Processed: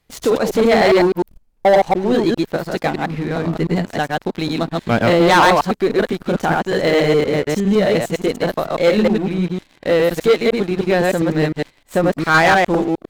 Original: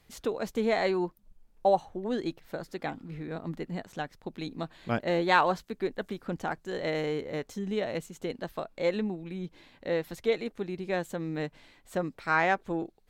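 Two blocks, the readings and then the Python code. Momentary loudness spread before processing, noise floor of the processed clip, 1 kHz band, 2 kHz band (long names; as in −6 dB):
12 LU, −56 dBFS, +13.5 dB, +14.0 dB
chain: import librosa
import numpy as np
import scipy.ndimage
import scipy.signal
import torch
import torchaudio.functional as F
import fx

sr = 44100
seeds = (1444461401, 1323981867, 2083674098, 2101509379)

y = fx.reverse_delay(x, sr, ms=102, wet_db=-1.0)
y = fx.leveller(y, sr, passes=3)
y = y * 10.0 ** (3.5 / 20.0)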